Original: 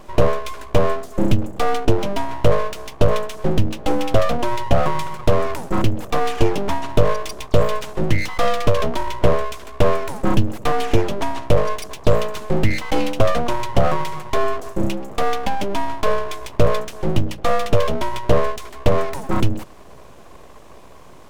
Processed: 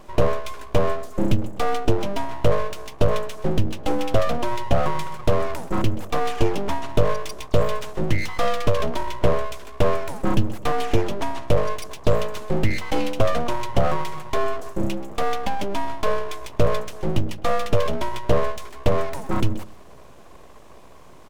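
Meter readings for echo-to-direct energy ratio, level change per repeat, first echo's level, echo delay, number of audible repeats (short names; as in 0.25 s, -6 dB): -18.5 dB, -11.5 dB, -19.0 dB, 0.129 s, 2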